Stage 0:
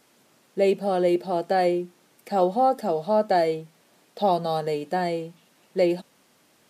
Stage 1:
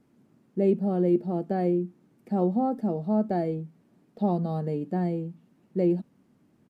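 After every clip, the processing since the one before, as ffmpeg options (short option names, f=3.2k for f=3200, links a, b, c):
-af "firequalizer=gain_entry='entry(230,0);entry(520,-15);entry(3500,-26)':delay=0.05:min_phase=1,volume=6dB"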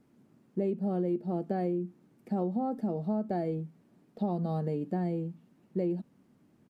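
-af "acompressor=threshold=-26dB:ratio=6,volume=-1dB"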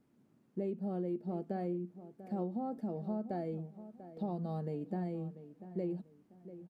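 -filter_complex "[0:a]asplit=2[a][b];[b]adelay=692,lowpass=f=1.8k:p=1,volume=-13.5dB,asplit=2[c][d];[d]adelay=692,lowpass=f=1.8k:p=1,volume=0.29,asplit=2[e][f];[f]adelay=692,lowpass=f=1.8k:p=1,volume=0.29[g];[a][c][e][g]amix=inputs=4:normalize=0,volume=-6.5dB"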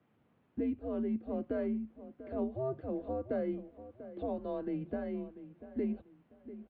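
-af "highpass=f=350:t=q:w=0.5412,highpass=f=350:t=q:w=1.307,lowpass=f=3.5k:t=q:w=0.5176,lowpass=f=3.5k:t=q:w=0.7071,lowpass=f=3.5k:t=q:w=1.932,afreqshift=-130,volume=6.5dB"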